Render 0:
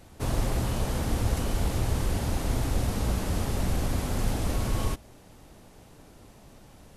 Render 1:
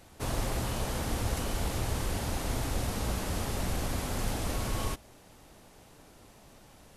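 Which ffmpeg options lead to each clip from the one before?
-af "lowshelf=f=440:g=-6"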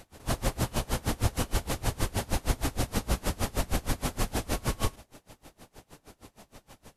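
-af "aeval=exprs='val(0)*pow(10,-27*(0.5-0.5*cos(2*PI*6.4*n/s))/20)':c=same,volume=8dB"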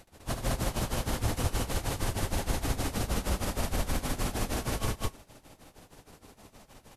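-af "aecho=1:1:72.89|204.1:0.398|1,volume=-4dB"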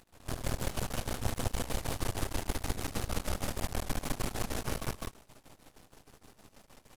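-af "aeval=exprs='max(val(0),0)':c=same"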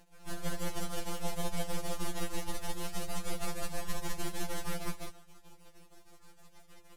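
-af "flanger=delay=5.8:depth=5.9:regen=-68:speed=0.29:shape=triangular,afftfilt=real='re*2.83*eq(mod(b,8),0)':imag='im*2.83*eq(mod(b,8),0)':win_size=2048:overlap=0.75,volume=5dB"

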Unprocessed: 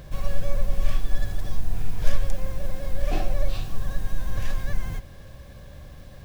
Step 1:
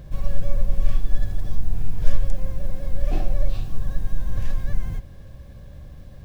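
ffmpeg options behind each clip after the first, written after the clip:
-af "lowshelf=f=440:g=9,volume=-6dB"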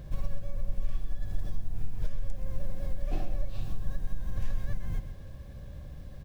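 -af "acompressor=threshold=-19dB:ratio=6,aecho=1:1:130:0.282,volume=-3dB"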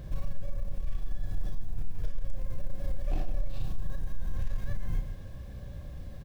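-filter_complex "[0:a]asoftclip=type=tanh:threshold=-22dB,asplit=2[a][b];[b]adelay=33,volume=-6.5dB[c];[a][c]amix=inputs=2:normalize=0,volume=1dB"

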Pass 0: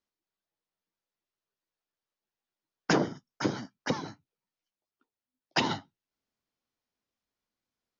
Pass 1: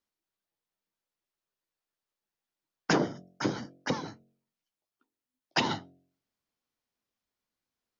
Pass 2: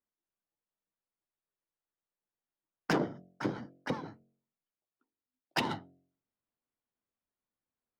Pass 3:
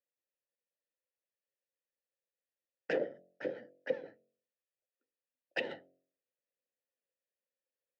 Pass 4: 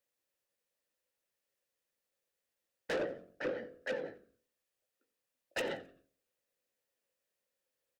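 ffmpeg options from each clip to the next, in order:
-af "bandreject=f=45.15:t=h:w=4,bandreject=f=90.3:t=h:w=4,bandreject=f=135.45:t=h:w=4,bandreject=f=180.6:t=h:w=4,bandreject=f=225.75:t=h:w=4,bandreject=f=270.9:t=h:w=4,bandreject=f=316.05:t=h:w=4,bandreject=f=361.2:t=h:w=4,bandreject=f=406.35:t=h:w=4,bandreject=f=451.5:t=h:w=4,bandreject=f=496.65:t=h:w=4,bandreject=f=541.8:t=h:w=4,bandreject=f=586.95:t=h:w=4,bandreject=f=632.1:t=h:w=4,bandreject=f=677.25:t=h:w=4,bandreject=f=722.4:t=h:w=4"
-af "adynamicsmooth=sensitivity=3:basefreq=2.3k,volume=-3.5dB"
-filter_complex "[0:a]asplit=3[a][b][c];[a]bandpass=f=530:t=q:w=8,volume=0dB[d];[b]bandpass=f=1.84k:t=q:w=8,volume=-6dB[e];[c]bandpass=f=2.48k:t=q:w=8,volume=-9dB[f];[d][e][f]amix=inputs=3:normalize=0,volume=8dB"
-filter_complex "[0:a]asoftclip=type=tanh:threshold=-38.5dB,asplit=2[a][b];[b]adelay=18,volume=-12dB[c];[a][c]amix=inputs=2:normalize=0,asplit=4[d][e][f][g];[e]adelay=88,afreqshift=-73,volume=-18.5dB[h];[f]adelay=176,afreqshift=-146,volume=-27.6dB[i];[g]adelay=264,afreqshift=-219,volume=-36.7dB[j];[d][h][i][j]amix=inputs=4:normalize=0,volume=7dB"

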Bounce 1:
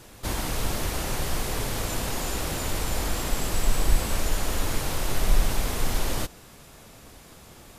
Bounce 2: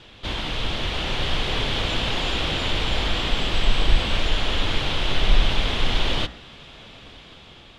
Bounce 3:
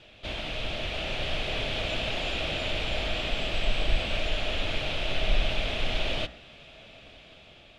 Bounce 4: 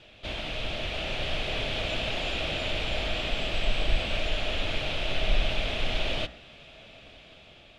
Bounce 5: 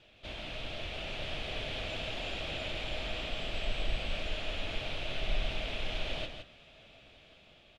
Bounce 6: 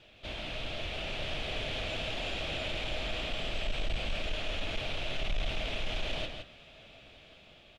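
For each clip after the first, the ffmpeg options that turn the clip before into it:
-af "dynaudnorm=f=420:g=5:m=4dB,lowpass=f=3.3k:t=q:w=3.8,bandreject=f=59.09:t=h:w=4,bandreject=f=118.18:t=h:w=4,bandreject=f=177.27:t=h:w=4,bandreject=f=236.36:t=h:w=4,bandreject=f=295.45:t=h:w=4,bandreject=f=354.54:t=h:w=4,bandreject=f=413.63:t=h:w=4,bandreject=f=472.72:t=h:w=4,bandreject=f=531.81:t=h:w=4,bandreject=f=590.9:t=h:w=4,bandreject=f=649.99:t=h:w=4,bandreject=f=709.08:t=h:w=4,bandreject=f=768.17:t=h:w=4,bandreject=f=827.26:t=h:w=4,bandreject=f=886.35:t=h:w=4,bandreject=f=945.44:t=h:w=4,bandreject=f=1.00453k:t=h:w=4,bandreject=f=1.06362k:t=h:w=4,bandreject=f=1.12271k:t=h:w=4,bandreject=f=1.1818k:t=h:w=4,bandreject=f=1.24089k:t=h:w=4,bandreject=f=1.29998k:t=h:w=4,bandreject=f=1.35907k:t=h:w=4,bandreject=f=1.41816k:t=h:w=4,bandreject=f=1.47725k:t=h:w=4,bandreject=f=1.53634k:t=h:w=4,bandreject=f=1.59543k:t=h:w=4,bandreject=f=1.65452k:t=h:w=4,bandreject=f=1.71361k:t=h:w=4,bandreject=f=1.7727k:t=h:w=4,bandreject=f=1.83179k:t=h:w=4,bandreject=f=1.89088k:t=h:w=4,bandreject=f=1.94997k:t=h:w=4,bandreject=f=2.00906k:t=h:w=4,bandreject=f=2.06815k:t=h:w=4"
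-af "equalizer=f=630:t=o:w=0.33:g=11,equalizer=f=1k:t=o:w=0.33:g=-6,equalizer=f=2.5k:t=o:w=0.33:g=7,volume=-8dB"
-af anull
-af "aecho=1:1:164:0.422,volume=-8dB"
-af "asoftclip=type=tanh:threshold=-28dB,volume=3dB"

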